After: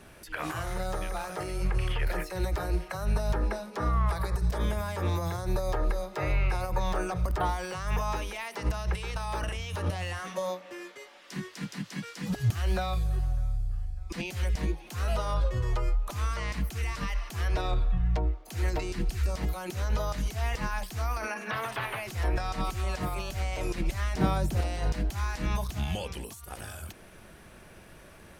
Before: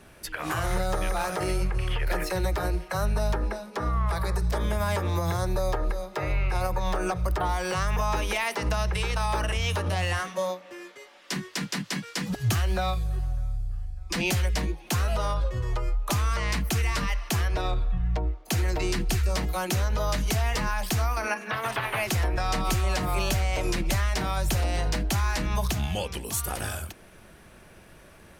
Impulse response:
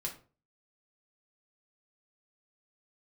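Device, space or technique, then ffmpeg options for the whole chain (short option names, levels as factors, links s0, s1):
de-esser from a sidechain: -filter_complex "[0:a]asplit=2[s0][s1];[s1]highpass=5000,apad=whole_len=1252250[s2];[s0][s2]sidechaincompress=threshold=0.00562:ratio=16:attack=4.2:release=62,asettb=1/sr,asplit=3[s3][s4][s5];[s3]atrim=end=24.164[s6];[s4]atrim=start=24.16:end=24.61,asetpts=PTS-STARTPTS,afade=t=in:d=0.004:c=qsin,afade=t=out:st=0.446:d=0.004:c=qsin,equalizer=f=220:w=0.37:g=11.5[s7];[s5]atrim=start=24.606[s8];[s6][s7]acrossfade=d=0.004:c1=hsin:c2=qsin[s9];[s9][s8]acrossfade=d=0.004:c1=qsin:c2=hsin"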